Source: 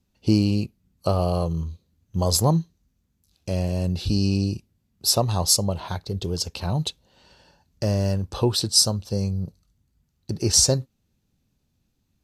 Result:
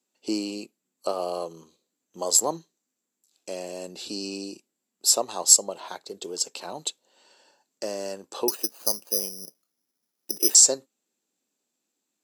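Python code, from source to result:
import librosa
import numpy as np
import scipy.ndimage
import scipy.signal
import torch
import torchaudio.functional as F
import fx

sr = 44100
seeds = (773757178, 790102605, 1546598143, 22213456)

y = scipy.signal.sosfilt(scipy.signal.butter(4, 300.0, 'highpass', fs=sr, output='sos'), x)
y = fx.peak_eq(y, sr, hz=7500.0, db=14.5, octaves=0.25)
y = fx.resample_bad(y, sr, factor=8, down='filtered', up='zero_stuff', at=(8.48, 10.55))
y = F.gain(torch.from_numpy(y), -3.5).numpy()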